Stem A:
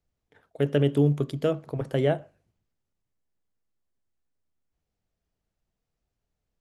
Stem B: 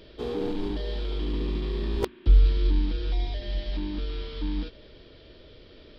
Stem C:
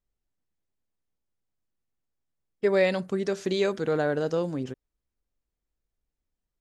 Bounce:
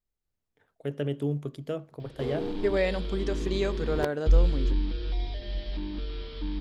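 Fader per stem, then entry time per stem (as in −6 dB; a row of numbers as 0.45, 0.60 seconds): −8.0, −3.0, −4.0 decibels; 0.25, 2.00, 0.00 seconds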